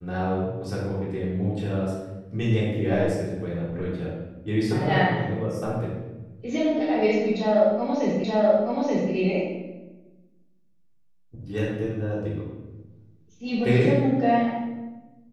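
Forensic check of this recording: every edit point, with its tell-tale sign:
0:08.24: the same again, the last 0.88 s

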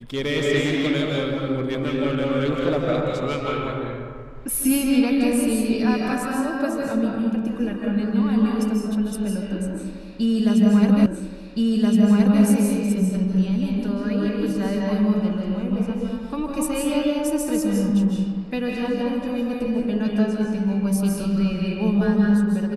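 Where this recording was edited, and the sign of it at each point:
0:11.06: the same again, the last 1.37 s

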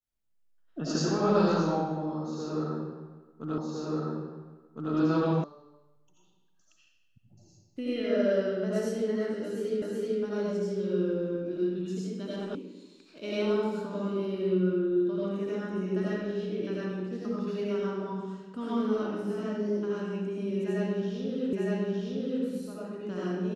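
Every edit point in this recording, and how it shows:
0:03.58: the same again, the last 1.36 s
0:05.44: cut off before it has died away
0:09.82: the same again, the last 0.38 s
0:12.55: cut off before it has died away
0:21.53: the same again, the last 0.91 s

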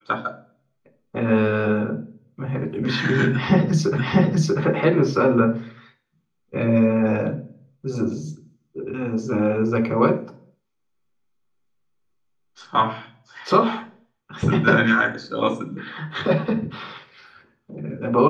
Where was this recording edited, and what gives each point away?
0:03.98: the same again, the last 0.64 s

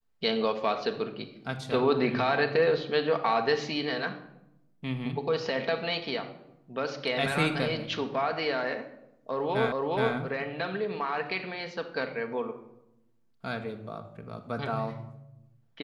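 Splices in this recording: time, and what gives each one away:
0:09.72: the same again, the last 0.42 s

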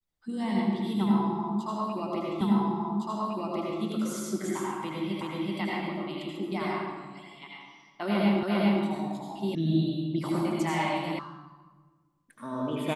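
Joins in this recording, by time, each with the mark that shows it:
0:02.41: the same again, the last 1.41 s
0:05.21: the same again, the last 0.38 s
0:08.43: the same again, the last 0.4 s
0:09.55: cut off before it has died away
0:11.19: cut off before it has died away

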